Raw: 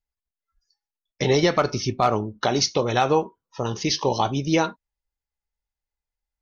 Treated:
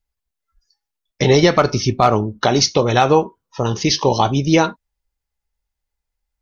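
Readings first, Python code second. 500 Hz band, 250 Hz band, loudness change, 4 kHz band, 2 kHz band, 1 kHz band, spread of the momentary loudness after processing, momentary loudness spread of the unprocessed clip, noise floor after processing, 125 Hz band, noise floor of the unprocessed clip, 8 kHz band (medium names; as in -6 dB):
+6.5 dB, +7.0 dB, +6.5 dB, +6.0 dB, +6.0 dB, +6.0 dB, 8 LU, 8 LU, -82 dBFS, +8.0 dB, under -85 dBFS, no reading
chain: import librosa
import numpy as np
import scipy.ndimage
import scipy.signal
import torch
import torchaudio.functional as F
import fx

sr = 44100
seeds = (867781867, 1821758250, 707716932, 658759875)

y = fx.low_shelf(x, sr, hz=150.0, db=4.0)
y = F.gain(torch.from_numpy(y), 6.0).numpy()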